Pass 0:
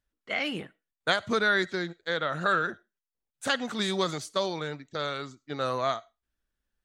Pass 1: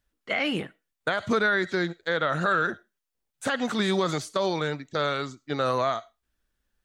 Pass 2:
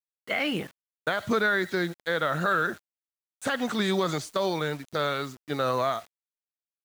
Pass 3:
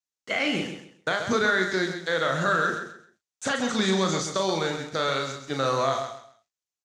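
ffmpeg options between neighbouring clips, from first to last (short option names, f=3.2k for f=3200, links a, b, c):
-filter_complex "[0:a]acrossover=split=2700[a][b];[b]acompressor=threshold=-40dB:ratio=4:attack=1:release=60[c];[a][c]amix=inputs=2:normalize=0,alimiter=limit=-20.5dB:level=0:latency=1:release=86,volume=6dB"
-af "acrusher=bits=7:mix=0:aa=0.000001,volume=-1dB"
-filter_complex "[0:a]lowpass=f=6.6k:t=q:w=2.7,asplit=2[a][b];[b]adelay=37,volume=-6dB[c];[a][c]amix=inputs=2:normalize=0,asplit=2[d][e];[e]aecho=0:1:132|264|396:0.398|0.104|0.0269[f];[d][f]amix=inputs=2:normalize=0"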